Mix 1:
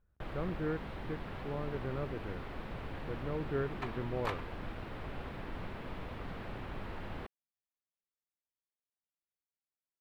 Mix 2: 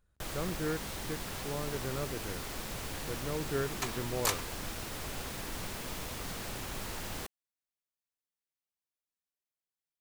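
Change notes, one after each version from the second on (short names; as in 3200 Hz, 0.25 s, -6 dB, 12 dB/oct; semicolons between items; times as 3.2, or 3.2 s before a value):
master: remove air absorption 490 m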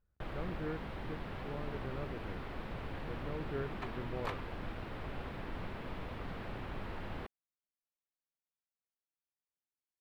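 speech -5.0 dB; second sound -3.5 dB; master: add air absorption 470 m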